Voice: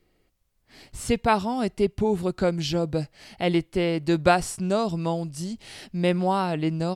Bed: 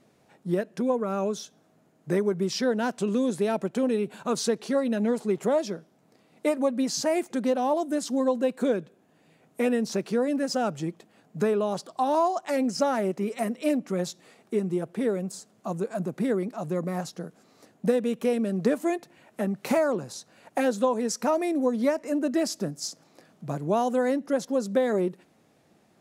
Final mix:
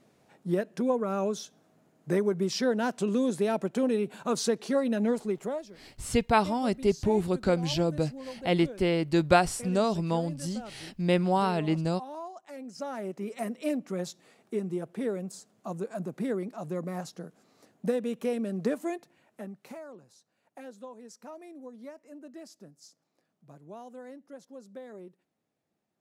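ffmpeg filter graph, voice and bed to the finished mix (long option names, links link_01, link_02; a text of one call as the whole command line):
ffmpeg -i stem1.wav -i stem2.wav -filter_complex "[0:a]adelay=5050,volume=-2dB[link_01];[1:a]volume=10.5dB,afade=type=out:start_time=5.1:duration=0.59:silence=0.16788,afade=type=in:start_time=12.64:duration=0.82:silence=0.251189,afade=type=out:start_time=18.68:duration=1.07:silence=0.16788[link_02];[link_01][link_02]amix=inputs=2:normalize=0" out.wav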